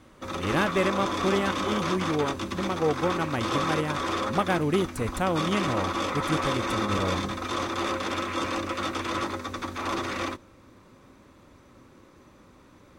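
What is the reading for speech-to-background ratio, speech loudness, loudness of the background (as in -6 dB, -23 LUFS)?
1.0 dB, -29.0 LUFS, -30.0 LUFS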